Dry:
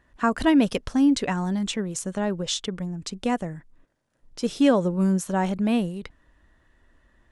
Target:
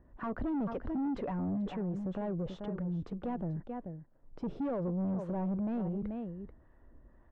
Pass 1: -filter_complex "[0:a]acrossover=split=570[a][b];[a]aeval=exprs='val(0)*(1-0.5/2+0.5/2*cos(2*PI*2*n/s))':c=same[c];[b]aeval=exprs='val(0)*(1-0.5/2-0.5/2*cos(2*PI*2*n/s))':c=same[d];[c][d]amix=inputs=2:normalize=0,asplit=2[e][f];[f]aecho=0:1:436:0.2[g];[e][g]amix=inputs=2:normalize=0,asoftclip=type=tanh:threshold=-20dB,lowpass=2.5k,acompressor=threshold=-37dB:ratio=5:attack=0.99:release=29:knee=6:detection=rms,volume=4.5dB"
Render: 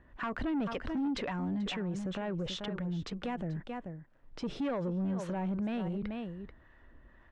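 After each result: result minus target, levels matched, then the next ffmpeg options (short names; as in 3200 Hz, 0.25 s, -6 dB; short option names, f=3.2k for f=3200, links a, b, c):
2000 Hz band +10.0 dB; soft clip: distortion -6 dB
-filter_complex "[0:a]acrossover=split=570[a][b];[a]aeval=exprs='val(0)*(1-0.5/2+0.5/2*cos(2*PI*2*n/s))':c=same[c];[b]aeval=exprs='val(0)*(1-0.5/2-0.5/2*cos(2*PI*2*n/s))':c=same[d];[c][d]amix=inputs=2:normalize=0,asplit=2[e][f];[f]aecho=0:1:436:0.2[g];[e][g]amix=inputs=2:normalize=0,asoftclip=type=tanh:threshold=-20dB,lowpass=830,acompressor=threshold=-37dB:ratio=5:attack=0.99:release=29:knee=6:detection=rms,volume=4.5dB"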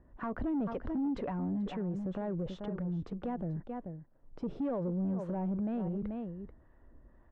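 soft clip: distortion -6 dB
-filter_complex "[0:a]acrossover=split=570[a][b];[a]aeval=exprs='val(0)*(1-0.5/2+0.5/2*cos(2*PI*2*n/s))':c=same[c];[b]aeval=exprs='val(0)*(1-0.5/2-0.5/2*cos(2*PI*2*n/s))':c=same[d];[c][d]amix=inputs=2:normalize=0,asplit=2[e][f];[f]aecho=0:1:436:0.2[g];[e][g]amix=inputs=2:normalize=0,asoftclip=type=tanh:threshold=-27.5dB,lowpass=830,acompressor=threshold=-37dB:ratio=5:attack=0.99:release=29:knee=6:detection=rms,volume=4.5dB"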